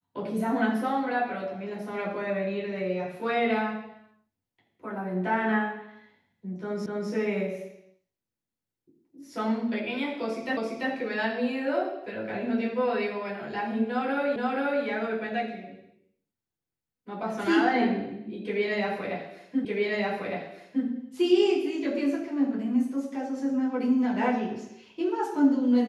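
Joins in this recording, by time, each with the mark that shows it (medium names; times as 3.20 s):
6.86 s: repeat of the last 0.25 s
10.57 s: repeat of the last 0.34 s
14.36 s: repeat of the last 0.48 s
19.65 s: repeat of the last 1.21 s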